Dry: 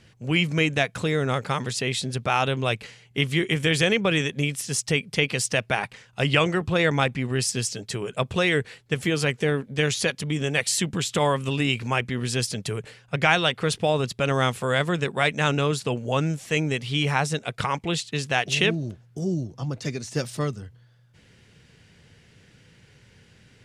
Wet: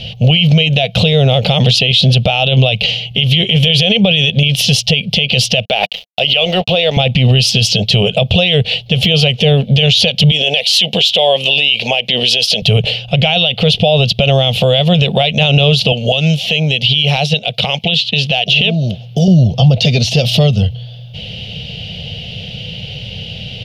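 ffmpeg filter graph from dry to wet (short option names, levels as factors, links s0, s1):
-filter_complex "[0:a]asettb=1/sr,asplit=3[s0][s1][s2];[s0]atrim=end=5.654[s3];[s1]atrim=start=5.65:end=6.97,asetpts=PTS-STARTPTS,afade=t=in:d=0.004:c=qsin,afade=t=out:st=1.316:d=0.004:c=qsin,highpass=310,aeval=exprs='sgn(val(0))*max(abs(val(0))-0.00531,0)':c=same[s4];[s2]atrim=start=6.966[s5];[s3][s4]acrossfade=d=0.004:c1=hsin:c2=qsin[s6];[s6][s5]acrossfade=d=0.004:c1=qsin:c2=hsin,asettb=1/sr,asplit=3[s7][s8][s9];[s7]atrim=end=10.314[s10];[s8]atrim=start=10.31:end=12.62,asetpts=PTS-STARTPTS,afade=t=in:d=0.004:c=qsin,afade=t=out:st=2.306:d=0.004:c=qsin,highpass=430,equalizer=f=1300:t=o:w=0.4:g=-11,asoftclip=type=hard:threshold=0.224[s11];[s9]atrim=start=12.616[s12];[s10][s11]acrossfade=d=0.004:c1=hsin:c2=qsin[s13];[s13][s12]acrossfade=d=0.004:c1=qsin:c2=hsin,asettb=1/sr,asplit=3[s14][s15][s16];[s14]atrim=end=15.924[s17];[s15]atrim=start=15.92:end=19.28,asetpts=PTS-STARTPTS,afade=t=in:d=0.004:c=qsin,afade=t=out:st=3.356:d=0.004:c=qsin,highpass=130,acrossover=split=2200|4400[s18][s19][s20];[s18]acompressor=threshold=0.0158:ratio=4[s21];[s19]acompressor=threshold=0.00794:ratio=4[s22];[s20]acompressor=threshold=0.00355:ratio=4[s23];[s21][s22][s23]amix=inputs=3:normalize=0,asoftclip=type=hard:threshold=0.0841[s24];[s16]atrim=start=19.276[s25];[s17][s24]acrossfade=d=0.004:c1=hsin:c2=qsin[s26];[s26][s25]acrossfade=d=0.004:c1=qsin:c2=hsin,acompressor=threshold=0.0501:ratio=6,firequalizer=gain_entry='entry(190,0);entry(310,-19);entry(490,-1);entry(700,3);entry(1000,-18);entry(1700,-21);entry(2900,11);entry(7800,-23);entry(13000,-9)':delay=0.05:min_phase=1,alimiter=level_in=26.6:limit=0.891:release=50:level=0:latency=1,volume=0.891"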